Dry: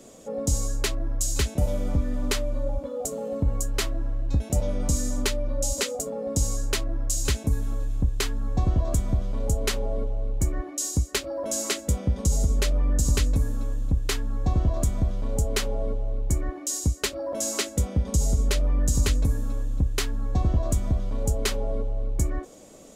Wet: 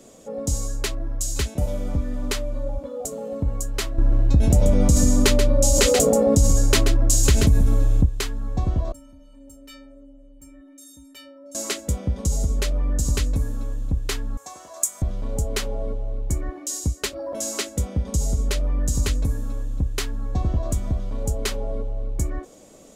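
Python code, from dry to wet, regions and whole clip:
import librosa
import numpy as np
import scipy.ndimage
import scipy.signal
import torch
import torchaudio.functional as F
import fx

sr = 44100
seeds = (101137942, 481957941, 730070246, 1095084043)

y = fx.chain(x, sr, fx.low_shelf(hz=450.0, db=5.5),
    fx.echo_single(ms=133, db=-8.5),
    fx.env_flatten(amount_pct=70), at=(3.98, 8.06))
y = fx.chain(y, sr, fx.clip_hard(threshold_db=-15.5),
    fx.stiff_resonator(f0_hz=270.0, decay_s=0.8, stiffness=0.03),
    fx.env_flatten(amount_pct=50), at=(8.92, 11.55))
y = fx.chain(y, sr, fx.highpass(hz=890.0, slope=12),
    fx.high_shelf_res(hz=5300.0, db=11.5, q=1.5), at=(14.37, 15.02))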